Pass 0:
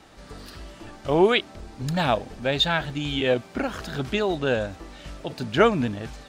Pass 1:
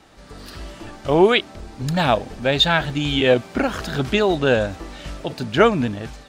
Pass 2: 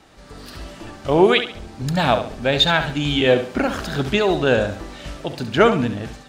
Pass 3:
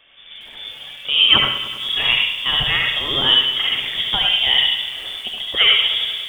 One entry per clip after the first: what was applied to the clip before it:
AGC gain up to 7 dB
flutter echo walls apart 11.8 m, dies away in 0.42 s
reverb RT60 0.50 s, pre-delay 63 ms, DRR 0.5 dB; inverted band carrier 3500 Hz; lo-fi delay 99 ms, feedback 80%, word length 6-bit, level -14 dB; gain -2.5 dB

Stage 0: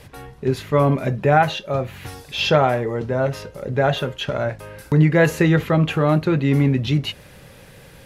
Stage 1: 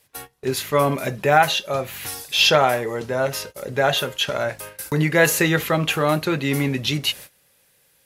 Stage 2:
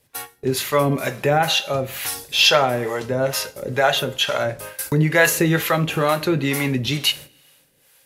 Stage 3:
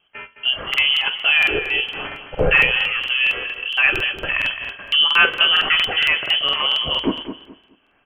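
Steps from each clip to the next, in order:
RIAA curve recording; gate -37 dBFS, range -20 dB; low shelf 98 Hz +7.5 dB; gain +1 dB
two-slope reverb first 0.55 s, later 2.1 s, from -24 dB, DRR 12.5 dB; harmonic tremolo 2.2 Hz, depth 70%, crossover 520 Hz; in parallel at -1 dB: compressor, threshold -23 dBFS, peak gain reduction 10.5 dB
feedback echo 0.213 s, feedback 25%, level -10.5 dB; inverted band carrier 3200 Hz; crackling interface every 0.23 s, samples 2048, repeat, from 0.69; gain +1 dB

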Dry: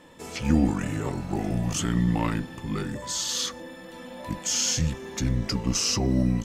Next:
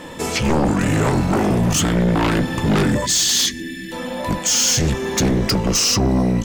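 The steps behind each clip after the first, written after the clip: vocal rider within 5 dB 0.5 s; spectral gain 3.06–3.92, 440–1600 Hz -28 dB; sine folder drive 11 dB, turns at -11 dBFS; gain -1.5 dB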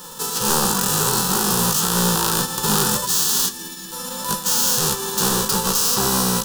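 spectral whitening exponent 0.3; fixed phaser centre 430 Hz, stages 8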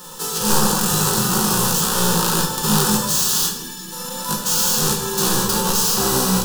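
shoebox room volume 260 m³, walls mixed, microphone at 0.96 m; gain -1.5 dB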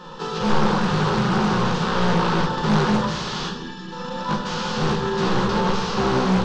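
in parallel at -8 dB: wrapped overs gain 14 dB; on the sum: Gaussian blur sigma 2.4 samples; Doppler distortion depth 0.3 ms

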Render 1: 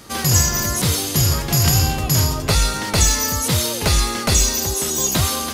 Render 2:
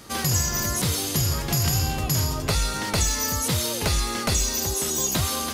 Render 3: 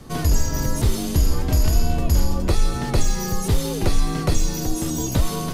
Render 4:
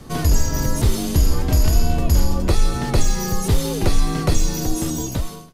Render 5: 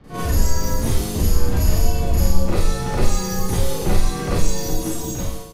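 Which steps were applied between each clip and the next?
compressor 2:1, threshold -19 dBFS, peak gain reduction 5.5 dB; gain -3 dB
frequency shift -74 Hz; tilt shelf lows +7.5 dB, about 720 Hz; gain +1.5 dB
ending faded out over 0.70 s; gain +2 dB
bands offset in time lows, highs 40 ms, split 3900 Hz; Schroeder reverb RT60 0.54 s, combs from 31 ms, DRR -8.5 dB; gain -9 dB

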